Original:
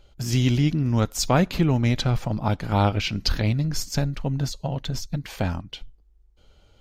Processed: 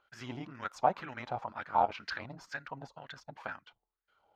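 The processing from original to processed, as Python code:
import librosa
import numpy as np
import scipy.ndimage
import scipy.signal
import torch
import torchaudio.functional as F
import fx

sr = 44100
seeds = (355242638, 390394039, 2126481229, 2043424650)

y = fx.wah_lfo(x, sr, hz=1.3, low_hz=780.0, high_hz=1700.0, q=4.1)
y = fx.stretch_grains(y, sr, factor=0.64, grain_ms=55.0)
y = y * librosa.db_to_amplitude(3.5)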